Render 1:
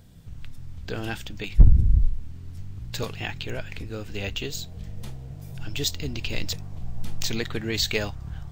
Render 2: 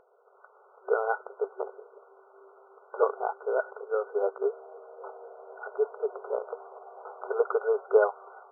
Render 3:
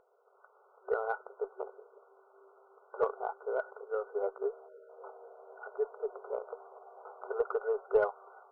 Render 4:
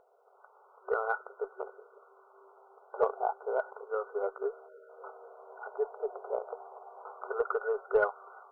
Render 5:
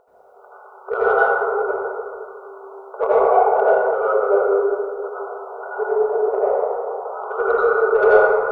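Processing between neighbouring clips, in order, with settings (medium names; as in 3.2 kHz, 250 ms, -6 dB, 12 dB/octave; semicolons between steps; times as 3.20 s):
FFT band-pass 380–1500 Hz; level rider gain up to 6 dB; trim +4 dB
Chebyshev shaper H 2 -23 dB, 8 -40 dB, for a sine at -9.5 dBFS; spectral selection erased 4.68–4.89 s, 630–1300 Hz; trim -6 dB
sweeping bell 0.32 Hz 720–1500 Hz +7 dB
in parallel at -3 dB: saturation -20.5 dBFS, distortion -16 dB; on the sum: reverberation RT60 2.2 s, pre-delay 72 ms, DRR -9.5 dB; trim +2 dB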